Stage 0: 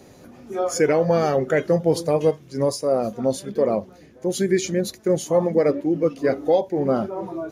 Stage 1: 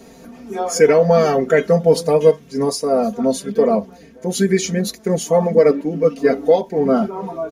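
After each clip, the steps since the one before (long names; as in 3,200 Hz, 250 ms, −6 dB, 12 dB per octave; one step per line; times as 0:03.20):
comb filter 4.4 ms, depth 95%
level +2.5 dB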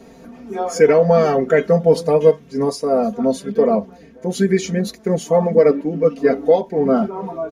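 high-shelf EQ 4,300 Hz −9 dB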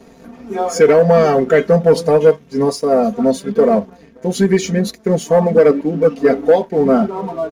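leveller curve on the samples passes 1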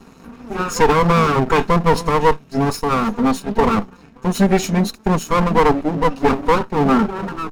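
lower of the sound and its delayed copy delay 0.75 ms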